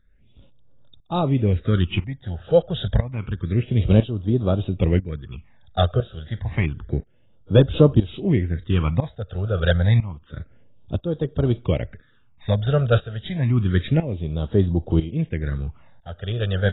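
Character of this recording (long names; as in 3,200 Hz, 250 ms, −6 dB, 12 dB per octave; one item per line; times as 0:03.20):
tremolo saw up 1 Hz, depth 85%
phaser sweep stages 8, 0.29 Hz, lowest notch 280–2,200 Hz
AAC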